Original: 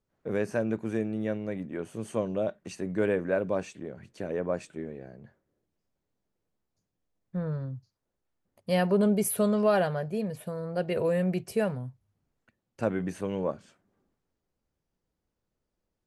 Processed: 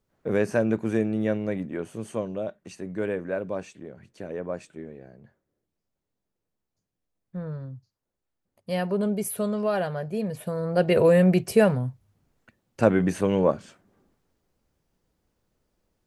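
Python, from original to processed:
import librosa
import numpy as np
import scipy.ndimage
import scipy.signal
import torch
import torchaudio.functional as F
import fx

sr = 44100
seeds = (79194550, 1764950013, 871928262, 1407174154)

y = fx.gain(x, sr, db=fx.line((1.51, 5.5), (2.43, -2.0), (9.74, -2.0), (10.88, 9.0)))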